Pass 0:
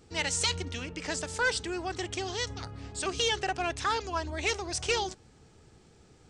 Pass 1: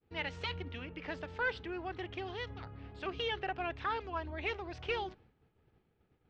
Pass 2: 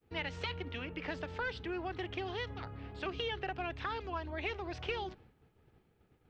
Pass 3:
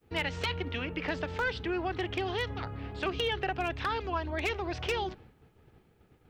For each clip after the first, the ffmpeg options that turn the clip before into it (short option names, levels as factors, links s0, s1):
-af "lowpass=f=3100:w=0.5412,lowpass=f=3100:w=1.3066,agate=range=0.0224:threshold=0.00316:ratio=3:detection=peak,volume=0.501"
-filter_complex "[0:a]acrossover=split=280|3400[s0][s1][s2];[s0]acompressor=threshold=0.00447:ratio=4[s3];[s1]acompressor=threshold=0.00891:ratio=4[s4];[s2]acompressor=threshold=0.00251:ratio=4[s5];[s3][s4][s5]amix=inputs=3:normalize=0,volume=1.58"
-af "aeval=exprs='0.0376*(abs(mod(val(0)/0.0376+3,4)-2)-1)':c=same,volume=2.11"